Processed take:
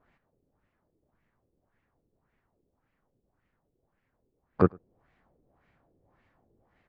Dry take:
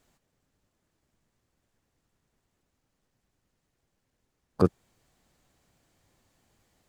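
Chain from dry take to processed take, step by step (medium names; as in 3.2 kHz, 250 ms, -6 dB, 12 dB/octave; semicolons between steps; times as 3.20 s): LFO low-pass sine 1.8 Hz 400–2200 Hz; echo from a far wall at 18 m, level -29 dB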